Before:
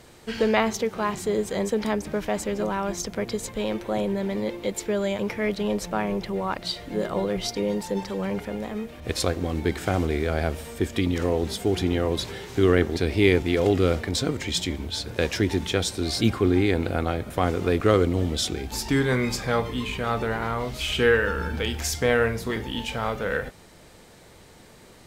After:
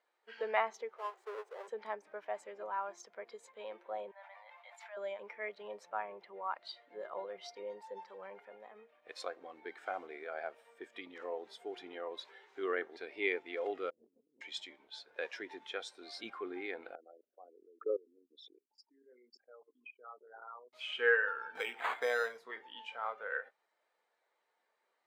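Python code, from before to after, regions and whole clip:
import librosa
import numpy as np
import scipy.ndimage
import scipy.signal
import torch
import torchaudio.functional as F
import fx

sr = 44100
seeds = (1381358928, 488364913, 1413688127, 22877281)

y = fx.chain(x, sr, fx.halfwave_hold(),
    fx.ladder_highpass(hz=370.0, resonance_pct=45), at=(0.96, 1.68))
y = fx.chain(y, sr, fx.ellip_highpass(hz=660.0, order=4, stop_db=50),
    fx.high_shelf(hz=3300.0, db=-4.0),
    fx.sustainer(db_per_s=29.0), at=(4.11, 4.97))
y = fx.chain(y, sr, fx.ladder_lowpass(hz=450.0, resonance_pct=25),
    fx.peak_eq(hz=190.0, db=6.0, octaves=2.1),
    fx.over_compress(threshold_db=-38.0, ratio=-1.0), at=(13.9, 14.41))
y = fx.chain(y, sr, fx.envelope_sharpen(power=3.0),
    fx.highpass(hz=250.0, slope=24),
    fx.level_steps(step_db=18), at=(16.95, 20.73))
y = fx.chain(y, sr, fx.resample_bad(factor=8, down='none', up='hold'),
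    fx.band_squash(depth_pct=70), at=(21.55, 22.38))
y = scipy.signal.sosfilt(scipy.signal.butter(2, 860.0, 'highpass', fs=sr, output='sos'), y)
y = fx.high_shelf(y, sr, hz=3100.0, db=-11.5)
y = fx.spectral_expand(y, sr, expansion=1.5)
y = F.gain(torch.from_numpy(y), -4.0).numpy()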